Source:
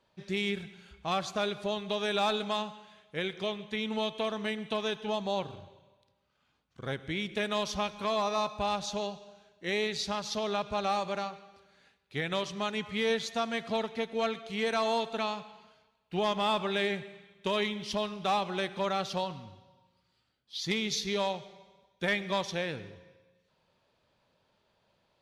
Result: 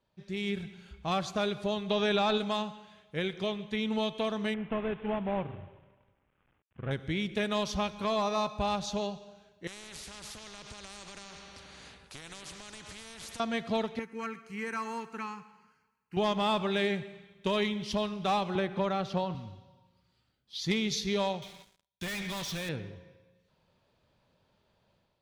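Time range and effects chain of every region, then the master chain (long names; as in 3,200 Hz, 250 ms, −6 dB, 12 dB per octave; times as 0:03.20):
0:01.90–0:02.38: low-pass filter 5,600 Hz + transient designer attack −1 dB, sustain −5 dB + envelope flattener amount 70%
0:04.54–0:06.91: variable-slope delta modulation 16 kbit/s + high-frequency loss of the air 140 metres
0:09.67–0:13.40: downward compressor 5 to 1, threshold −40 dBFS + bad sample-rate conversion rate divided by 2×, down none, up filtered + every bin compressed towards the loudest bin 4 to 1
0:13.99–0:16.17: high-pass filter 330 Hz 6 dB per octave + phaser with its sweep stopped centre 1,500 Hz, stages 4
0:18.55–0:19.35: high-shelf EQ 4,000 Hz −12 dB + multiband upward and downward compressor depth 70%
0:21.42–0:22.69: gain into a clipping stage and back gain 31 dB + guitar amp tone stack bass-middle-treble 5-5-5 + leveller curve on the samples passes 5
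whole clip: low-shelf EQ 250 Hz +8 dB; automatic gain control gain up to 7.5 dB; level −8.5 dB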